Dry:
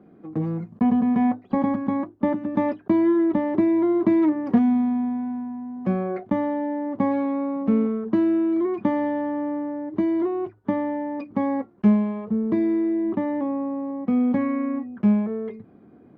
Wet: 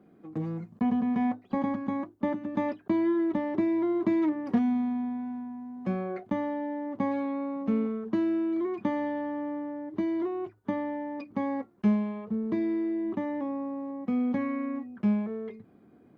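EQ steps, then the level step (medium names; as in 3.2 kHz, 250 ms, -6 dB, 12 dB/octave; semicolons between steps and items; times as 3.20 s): treble shelf 2.6 kHz +10 dB; -7.0 dB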